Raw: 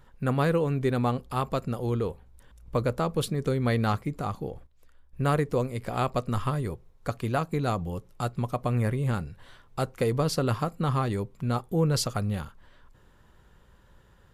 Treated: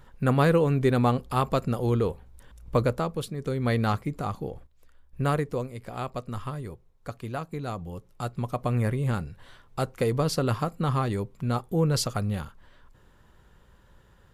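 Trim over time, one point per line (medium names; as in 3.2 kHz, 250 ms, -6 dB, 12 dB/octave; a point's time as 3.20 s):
2.81 s +3.5 dB
3.29 s -6 dB
3.71 s +0.5 dB
5.21 s +0.5 dB
5.77 s -6 dB
7.68 s -6 dB
8.67 s +0.5 dB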